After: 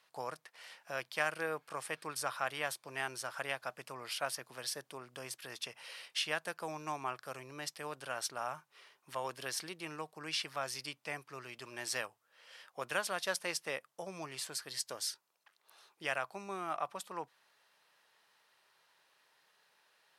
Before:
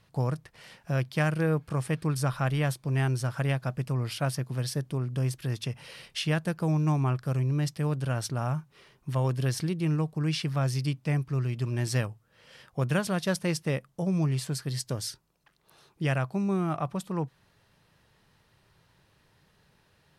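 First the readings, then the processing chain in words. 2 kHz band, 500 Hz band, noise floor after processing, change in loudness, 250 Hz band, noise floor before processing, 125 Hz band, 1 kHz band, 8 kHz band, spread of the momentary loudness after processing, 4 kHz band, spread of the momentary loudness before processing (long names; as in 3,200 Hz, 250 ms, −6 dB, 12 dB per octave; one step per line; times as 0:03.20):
−2.0 dB, −8.5 dB, −78 dBFS, −10.0 dB, −21.0 dB, −66 dBFS, −29.5 dB, −3.5 dB, −2.0 dB, 11 LU, −2.0 dB, 6 LU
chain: high-pass filter 700 Hz 12 dB per octave
level −2 dB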